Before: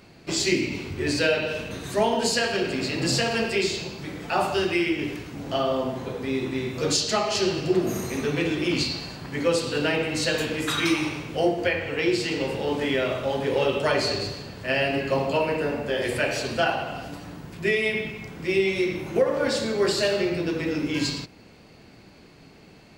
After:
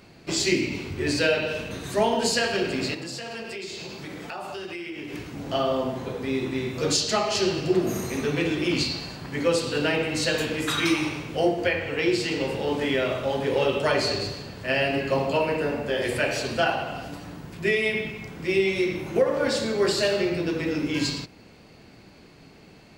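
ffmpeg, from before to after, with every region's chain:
-filter_complex "[0:a]asettb=1/sr,asplit=3[a][b][c];[a]atrim=end=2.944[d];[b]atrim=start=2.94:end=5.14,asetpts=PTS-STARTPTS,afade=t=in:d=0.004:c=qsin,afade=t=out:st=2.196:d=0.004:c=qsin,lowshelf=f=110:g=-10,acompressor=threshold=-32dB:ratio=6:attack=3.2:release=140:knee=1:detection=peak[e];[c]atrim=start=5.136[f];[d][e]acrossfade=d=0.004:c1=hsin:c2=qsin[g];[g][f]acrossfade=d=0.004:c1=qsin:c2=hsin"

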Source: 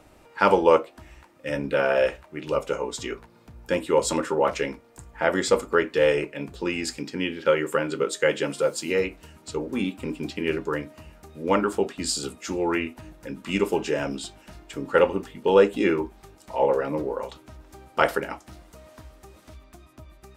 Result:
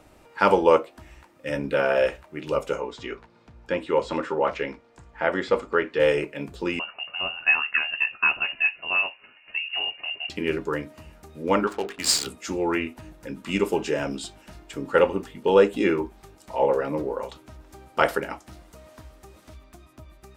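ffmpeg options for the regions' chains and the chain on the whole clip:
-filter_complex "[0:a]asettb=1/sr,asplit=3[a][b][c];[a]atrim=end=2.804[d];[b]atrim=start=2.8:end=6,asetpts=PTS-STARTPTS,afade=t=in:d=0.004:c=qsin,afade=t=out:st=3.196:d=0.004:c=qsin,lowpass=5.2k,acrossover=split=3500[e][f];[f]acompressor=threshold=-50dB:ratio=4:attack=1:release=60[g];[e][g]amix=inputs=2:normalize=0,lowshelf=f=440:g=-4[h];[c]atrim=start=5.996[i];[d][h]acrossfade=d=0.004:c1=hsin:c2=qsin[j];[j][i]acrossfade=d=0.004:c1=qsin:c2=hsin,asettb=1/sr,asplit=3[k][l][m];[k]atrim=end=6.794[n];[l]atrim=start=6.79:end=10.3,asetpts=PTS-STARTPTS,afade=t=in:d=0.004:c=qsin,afade=t=out:st=3.506:d=0.004:c=qsin,highpass=f=230:w=0.5412,highpass=f=230:w=1.3066,lowpass=f=2.6k:t=q:w=0.5098,lowpass=f=2.6k:t=q:w=0.6013,lowpass=f=2.6k:t=q:w=0.9,lowpass=f=2.6k:t=q:w=2.563,afreqshift=-3100[o];[m]atrim=start=10.296[p];[n][o]acrossfade=d=0.004:c1=hsin:c2=qsin[q];[q][p]acrossfade=d=0.004:c1=qsin:c2=hsin,asettb=1/sr,asplit=3[r][s][t];[r]atrim=end=11.674[u];[s]atrim=start=11.67:end=12.27,asetpts=PTS-STARTPTS,afade=t=in:d=0.004:c=qsin,afade=t=out:st=0.596:d=0.004:c=qsin,tiltshelf=f=770:g=-8,bandreject=f=50:t=h:w=6,bandreject=f=100:t=h:w=6,bandreject=f=150:t=h:w=6,bandreject=f=200:t=h:w=6,bandreject=f=250:t=h:w=6,bandreject=f=300:t=h:w=6,bandreject=f=350:t=h:w=6,bandreject=f=400:t=h:w=6,bandreject=f=450:t=h:w=6,adynamicsmooth=sensitivity=7.5:basefreq=540[v];[t]atrim=start=12.266[w];[u][v]acrossfade=d=0.004:c1=hsin:c2=qsin[x];[x][w]acrossfade=d=0.004:c1=qsin:c2=hsin"

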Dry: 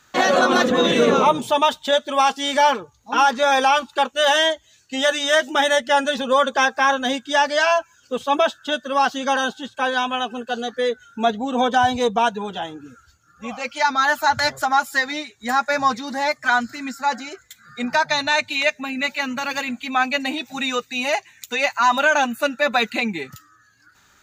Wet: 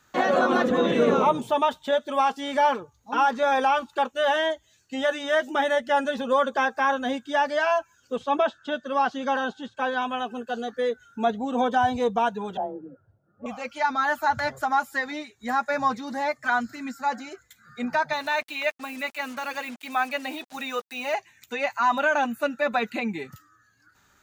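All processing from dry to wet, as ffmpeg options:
-filter_complex "[0:a]asettb=1/sr,asplit=3[a][b][c];[a]atrim=end=8.164[d];[b]atrim=start=8.16:end=10.02,asetpts=PTS-STARTPTS,afade=t=in:d=0.004:c=qsin,afade=t=out:st=1.856:d=0.004:c=qsin,lowpass=6.3k,acrossover=split=4900[e][f];[f]acompressor=threshold=-44dB:ratio=4:attack=1:release=60[g];[e][g]amix=inputs=2:normalize=0[h];[c]atrim=start=10.016[i];[d][h]acrossfade=d=0.004:c1=hsin:c2=qsin[j];[j][i]acrossfade=d=0.004:c1=qsin:c2=hsin,asettb=1/sr,asplit=3[k][l][m];[k]atrim=end=12.574[n];[l]atrim=start=12.57:end=13.46,asetpts=PTS-STARTPTS,afade=t=in:d=0.004:c=qsin,afade=t=out:st=0.886:d=0.004:c=qsin,lowpass=f=600:t=q:w=3.4,afreqshift=29[o];[m]atrim=start=13.456[p];[n][o]acrossfade=d=0.004:c1=hsin:c2=qsin[q];[q][p]acrossfade=d=0.004:c1=qsin:c2=hsin,asettb=1/sr,asplit=3[r][s][t];[r]atrim=end=18.134[u];[s]atrim=start=18.13:end=21.14,asetpts=PTS-STARTPTS,afade=t=in:d=0.004:c=qsin,afade=t=out:st=3.006:d=0.004:c=qsin,lowpass=7.8k,acrusher=bits=5:mix=0:aa=0.5,bass=f=250:g=-14,treble=f=4k:g=5[v];[t]atrim=start=21.136[w];[u][v]acrossfade=d=0.004:c1=hsin:c2=qsin[x];[x][w]acrossfade=d=0.004:c1=qsin:c2=hsin,equalizer=f=4.1k:t=o:w=2.8:g=-5,acrossover=split=3200[y][z];[z]acompressor=threshold=-41dB:ratio=4:attack=1:release=60[aa];[y][aa]amix=inputs=2:normalize=0,volume=-3.5dB"

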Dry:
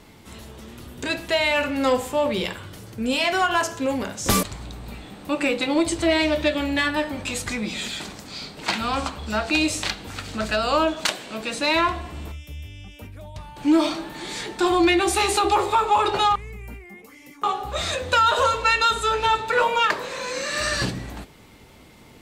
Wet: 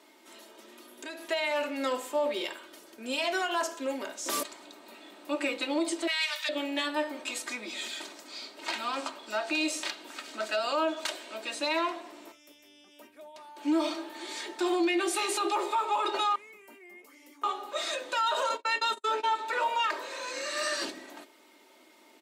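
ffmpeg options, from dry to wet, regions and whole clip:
-filter_complex "[0:a]asettb=1/sr,asplit=3[a][b][c];[a]atrim=end=0.844[d];[b]atrim=start=0.84:end=1.27,asetpts=PTS-STARTPTS,afade=t=in:d=0.004:c=qsin,afade=t=out:st=0.426:d=0.004:c=qsin,equalizer=f=11k:w=7.2:g=10.5,acompressor=threshold=-31dB:ratio=4:attack=3.2:release=140:knee=1:detection=peak[e];[c]atrim=start=1.266[f];[d][e]acrossfade=d=0.004:c1=hsin:c2=qsin[g];[g][f]acrossfade=d=0.004:c1=qsin:c2=hsin,asettb=1/sr,asplit=3[h][i][j];[h]atrim=end=6.074[k];[i]atrim=start=6.07:end=6.49,asetpts=PTS-STARTPTS,afade=t=in:d=0.004:c=qsin,afade=t=out:st=0.416:d=0.004:c=qsin,highpass=f=1.1k:w=0.5412,highpass=f=1.1k:w=1.3066,highshelf=f=2.3k:g=10[l];[j]atrim=start=6.486[m];[k][l]acrossfade=d=0.004:c1=hsin:c2=qsin[n];[n][m]acrossfade=d=0.004:c1=qsin:c2=hsin,asettb=1/sr,asplit=3[o][p][q];[o]atrim=end=18.494[r];[p]atrim=start=18.49:end=19.35,asetpts=PTS-STARTPTS,afade=t=in:d=0.004:c=qsin,afade=t=out:st=0.856:d=0.004:c=qsin,highpass=160,lowshelf=f=490:g=10,agate=range=-49dB:threshold=-23dB:ratio=16:release=100:detection=peak[s];[q]atrim=start=19.346[t];[r][s]acrossfade=d=0.004:c1=hsin:c2=qsin[u];[u][t]acrossfade=d=0.004:c1=qsin:c2=hsin,highpass=f=310:w=0.5412,highpass=f=310:w=1.3066,aecho=1:1:3.2:0.6,alimiter=limit=-12dB:level=0:latency=1:release=51,volume=-8dB"

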